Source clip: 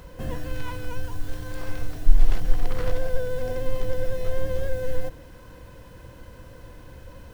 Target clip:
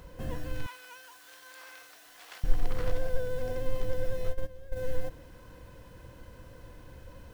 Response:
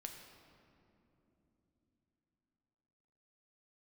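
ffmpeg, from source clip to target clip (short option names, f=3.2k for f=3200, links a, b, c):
-filter_complex "[0:a]asettb=1/sr,asplit=3[a][b][c];[a]atrim=end=0.664[d];[b]atrim=start=0.66:end=2.44,asetpts=PTS-STARTPTS,afade=t=in:d=0.004:c=qsin,afade=t=out:st=1.776:d=0.004:c=qsin,highpass=1.1k[e];[c]atrim=start=2.436[f];[d][e]acrossfade=d=0.004:c1=hsin:c2=qsin[g];[g][f]acrossfade=d=0.004:c1=qsin:c2=hsin,asplit=3[h][i][j];[h]afade=t=out:st=4.29:d=0.02[k];[i]agate=range=-16dB:threshold=-17dB:ratio=16:detection=peak,afade=t=in:st=4.29:d=0.02,afade=t=out:st=4.75:d=0.02[l];[j]afade=t=in:st=4.75:d=0.02[m];[k][l][m]amix=inputs=3:normalize=0,volume=-5dB"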